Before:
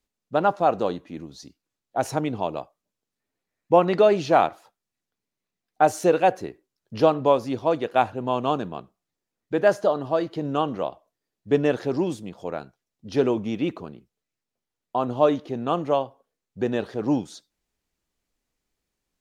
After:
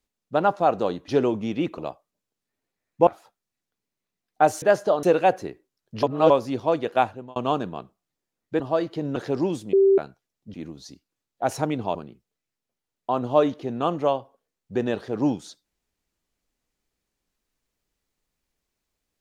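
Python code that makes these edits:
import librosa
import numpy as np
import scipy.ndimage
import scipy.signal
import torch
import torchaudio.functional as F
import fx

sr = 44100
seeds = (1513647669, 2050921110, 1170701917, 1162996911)

y = fx.edit(x, sr, fx.swap(start_s=1.08, length_s=1.41, other_s=13.11, other_length_s=0.7),
    fx.cut(start_s=3.78, length_s=0.69),
    fx.reverse_span(start_s=7.02, length_s=0.27),
    fx.fade_out_span(start_s=7.97, length_s=0.38),
    fx.move(start_s=9.59, length_s=0.41, to_s=6.02),
    fx.cut(start_s=10.56, length_s=1.17),
    fx.bleep(start_s=12.3, length_s=0.25, hz=390.0, db=-13.0), tone=tone)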